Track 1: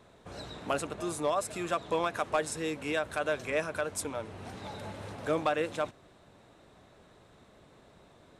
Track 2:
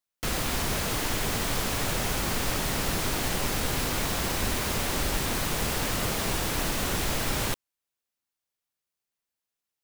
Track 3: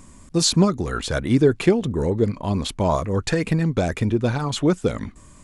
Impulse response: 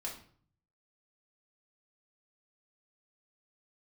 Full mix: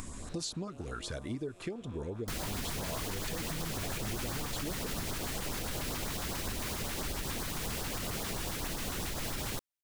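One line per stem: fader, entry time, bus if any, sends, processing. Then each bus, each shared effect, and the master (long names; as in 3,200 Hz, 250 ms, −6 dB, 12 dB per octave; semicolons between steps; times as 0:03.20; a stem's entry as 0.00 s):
+1.5 dB, 0.00 s, bus A, no send, spectrum smeared in time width 296 ms; downward compressor 4 to 1, threshold −46 dBFS, peak gain reduction 13 dB
−6.5 dB, 2.05 s, no bus, no send, no processing
−7.0 dB, 0.00 s, bus A, no send, upward compression, threshold −24 dBFS
bus A: 0.0 dB, parametric band 170 Hz −4 dB; downward compressor 8 to 1, threshold −35 dBFS, peak gain reduction 16.5 dB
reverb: not used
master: auto-filter notch saw up 7.4 Hz 380–3,100 Hz; brickwall limiter −26.5 dBFS, peak gain reduction 6 dB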